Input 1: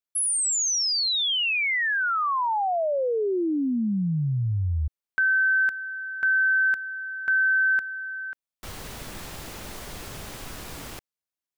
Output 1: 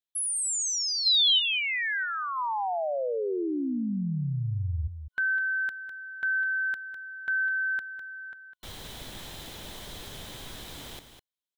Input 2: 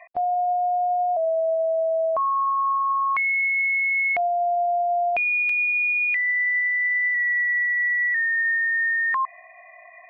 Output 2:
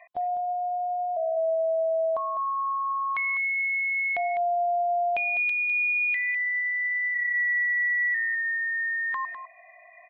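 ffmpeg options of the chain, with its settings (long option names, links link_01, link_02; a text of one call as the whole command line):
ffmpeg -i in.wav -af "superequalizer=10b=0.708:13b=2.51,aecho=1:1:203:0.335,volume=-5dB" out.wav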